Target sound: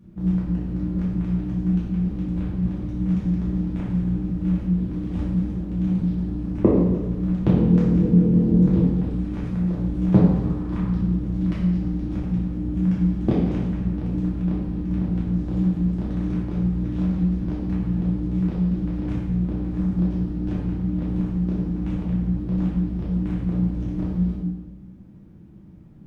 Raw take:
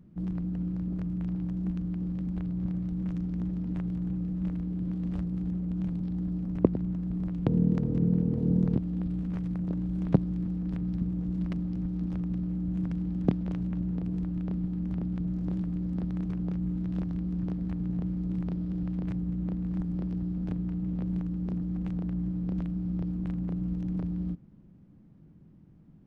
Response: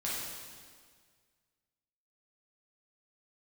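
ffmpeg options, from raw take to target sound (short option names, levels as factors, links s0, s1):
-filter_complex "[0:a]asettb=1/sr,asplit=3[s0][s1][s2];[s0]atrim=end=10.324[s3];[s1]atrim=start=10.32:end=10.93,asetpts=PTS-STARTPTS,afade=t=in:d=0.004:c=qsin,afade=t=out:st=0.606:d=0.004:c=qsin,equalizer=f=1100:w=1.7:g=11.5[s4];[s2]atrim=start=10.926[s5];[s3][s4]acrossfade=d=0.004:c1=hsin:c2=qsin[s6];[s6][s5]acrossfade=d=0.004:c1=qsin:c2=hsin[s7];[1:a]atrim=start_sample=2205,asetrate=70560,aresample=44100[s8];[s7][s8]afir=irnorm=-1:irlink=0,volume=2.82"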